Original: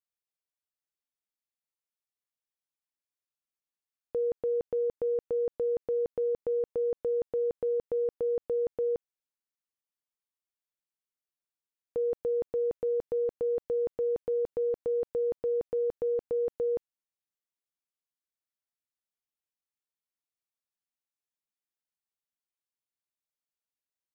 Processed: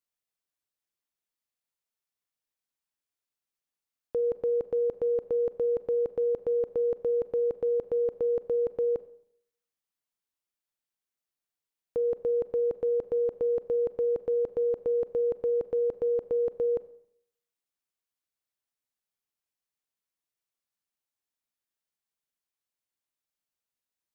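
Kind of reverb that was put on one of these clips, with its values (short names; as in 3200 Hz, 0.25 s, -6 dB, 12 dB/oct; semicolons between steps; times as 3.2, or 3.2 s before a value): Schroeder reverb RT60 0.67 s, combs from 30 ms, DRR 15.5 dB; gain +2 dB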